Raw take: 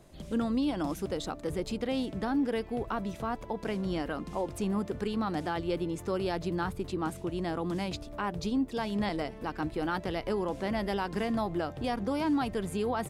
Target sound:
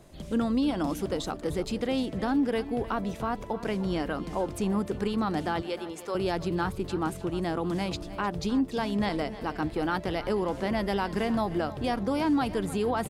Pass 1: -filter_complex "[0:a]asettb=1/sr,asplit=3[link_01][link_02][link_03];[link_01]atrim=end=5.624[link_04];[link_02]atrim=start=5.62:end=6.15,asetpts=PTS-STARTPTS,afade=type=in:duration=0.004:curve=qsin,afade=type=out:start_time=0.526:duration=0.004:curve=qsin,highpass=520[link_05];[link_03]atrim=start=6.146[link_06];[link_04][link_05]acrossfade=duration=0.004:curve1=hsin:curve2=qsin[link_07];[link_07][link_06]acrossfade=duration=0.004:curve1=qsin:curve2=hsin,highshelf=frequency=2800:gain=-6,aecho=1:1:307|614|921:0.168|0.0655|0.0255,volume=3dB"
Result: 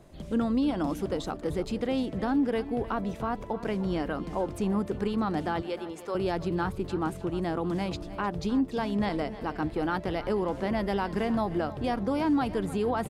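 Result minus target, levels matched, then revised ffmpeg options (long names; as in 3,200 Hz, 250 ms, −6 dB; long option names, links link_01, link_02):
4,000 Hz band −3.5 dB
-filter_complex "[0:a]asettb=1/sr,asplit=3[link_01][link_02][link_03];[link_01]atrim=end=5.624[link_04];[link_02]atrim=start=5.62:end=6.15,asetpts=PTS-STARTPTS,afade=type=in:duration=0.004:curve=qsin,afade=type=out:start_time=0.526:duration=0.004:curve=qsin,highpass=520[link_05];[link_03]atrim=start=6.146[link_06];[link_04][link_05]acrossfade=duration=0.004:curve1=hsin:curve2=qsin[link_07];[link_07][link_06]acrossfade=duration=0.004:curve1=qsin:curve2=hsin,aecho=1:1:307|614|921:0.168|0.0655|0.0255,volume=3dB"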